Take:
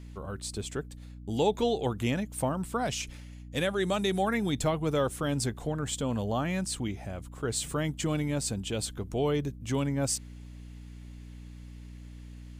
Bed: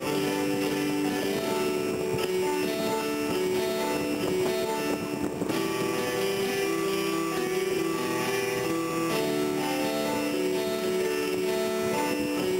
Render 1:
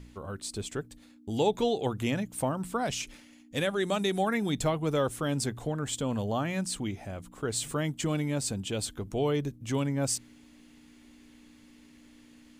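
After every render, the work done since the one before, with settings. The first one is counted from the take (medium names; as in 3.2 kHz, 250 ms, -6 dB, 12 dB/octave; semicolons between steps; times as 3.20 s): de-hum 60 Hz, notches 3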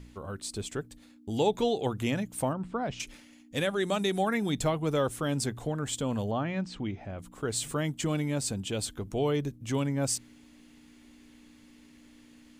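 2.53–3.00 s: tape spacing loss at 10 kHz 27 dB; 6.31–7.19 s: distance through air 200 m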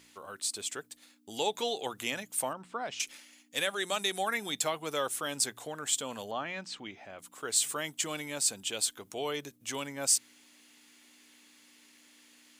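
high-pass 630 Hz 6 dB/octave; tilt EQ +2 dB/octave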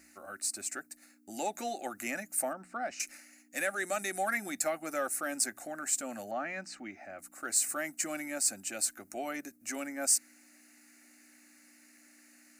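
static phaser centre 670 Hz, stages 8; in parallel at -8.5 dB: saturation -31 dBFS, distortion -9 dB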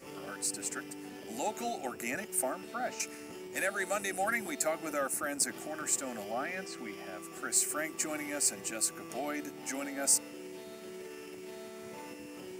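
add bed -18.5 dB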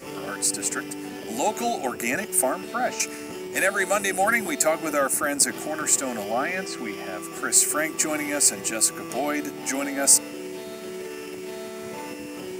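trim +10.5 dB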